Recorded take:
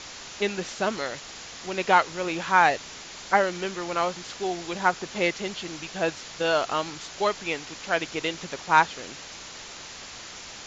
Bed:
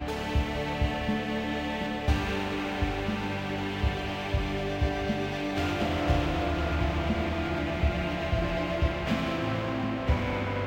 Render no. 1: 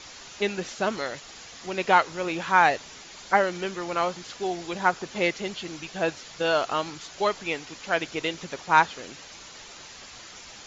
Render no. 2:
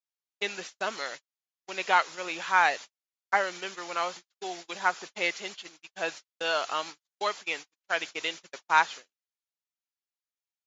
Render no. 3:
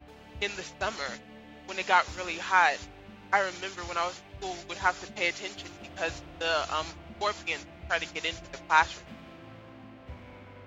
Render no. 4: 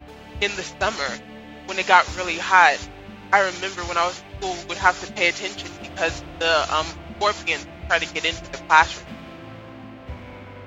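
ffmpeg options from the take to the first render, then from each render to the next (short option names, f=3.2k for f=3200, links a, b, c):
-af "afftdn=nr=6:nf=-42"
-af "agate=range=-56dB:threshold=-34dB:ratio=16:detection=peak,highpass=f=1.2k:p=1"
-filter_complex "[1:a]volume=-18.5dB[a];[0:a][a]amix=inputs=2:normalize=0"
-af "volume=9dB,alimiter=limit=-1dB:level=0:latency=1"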